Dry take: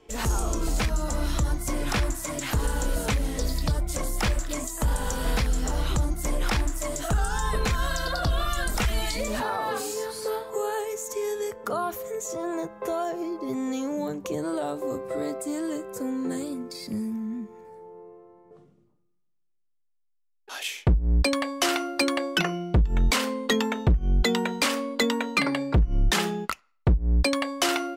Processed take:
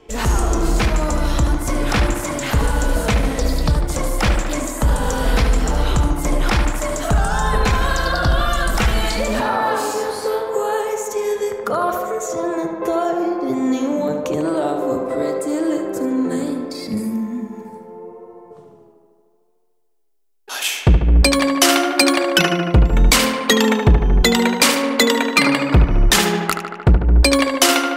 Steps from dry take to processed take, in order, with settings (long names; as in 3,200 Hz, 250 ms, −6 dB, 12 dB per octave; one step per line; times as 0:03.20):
high-shelf EQ 5,400 Hz −5.5 dB, from 0:16.97 +7.5 dB
tape delay 74 ms, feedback 84%, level −6 dB, low-pass 3,300 Hz
level +8 dB